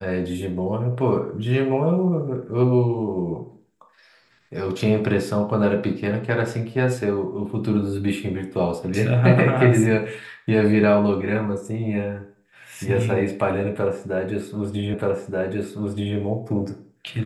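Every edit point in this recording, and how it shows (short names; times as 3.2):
14.94 repeat of the last 1.23 s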